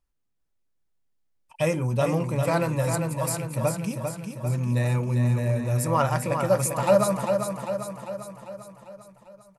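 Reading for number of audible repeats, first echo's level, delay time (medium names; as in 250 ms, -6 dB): 6, -6.0 dB, 397 ms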